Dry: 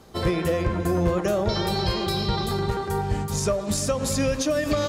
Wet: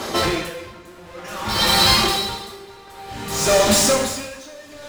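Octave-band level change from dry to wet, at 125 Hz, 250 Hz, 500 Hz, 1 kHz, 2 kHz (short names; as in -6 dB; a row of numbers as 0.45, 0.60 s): -5.0, -1.0, +1.5, +6.0, +8.5 dB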